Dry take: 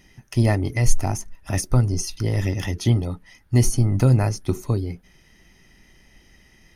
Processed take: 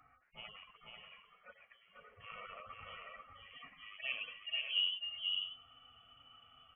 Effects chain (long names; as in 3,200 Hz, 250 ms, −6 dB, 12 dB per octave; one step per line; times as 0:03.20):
harmonic-percussive split with one part muted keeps harmonic
0:00.68–0:01.96: downward compressor 3 to 1, threshold −31 dBFS, peak gain reduction 17 dB
high-pass filter sweep 1,100 Hz → 210 Hz, 0:03.85–0:04.88
voice inversion scrambler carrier 3,200 Hz
multi-tap delay 491/587 ms −4/−10 dB
level −7 dB